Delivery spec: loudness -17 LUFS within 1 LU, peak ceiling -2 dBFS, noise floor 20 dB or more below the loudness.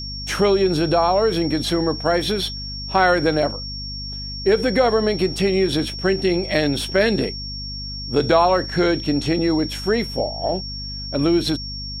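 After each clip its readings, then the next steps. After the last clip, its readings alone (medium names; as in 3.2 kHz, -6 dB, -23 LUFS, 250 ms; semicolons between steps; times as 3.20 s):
hum 50 Hz; highest harmonic 250 Hz; hum level -31 dBFS; steady tone 5.5 kHz; tone level -30 dBFS; loudness -20.5 LUFS; peak level -3.5 dBFS; loudness target -17.0 LUFS
-> hum notches 50/100/150/200/250 Hz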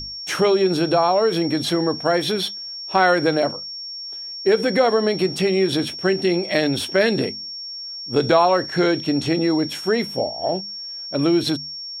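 hum not found; steady tone 5.5 kHz; tone level -30 dBFS
-> band-stop 5.5 kHz, Q 30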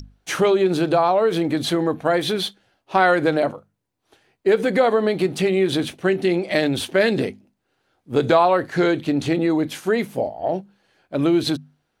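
steady tone not found; loudness -20.5 LUFS; peak level -4.0 dBFS; loudness target -17.0 LUFS
-> trim +3.5 dB; peak limiter -2 dBFS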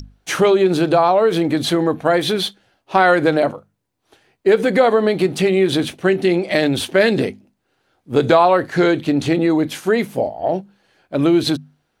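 loudness -17.0 LUFS; peak level -2.0 dBFS; noise floor -70 dBFS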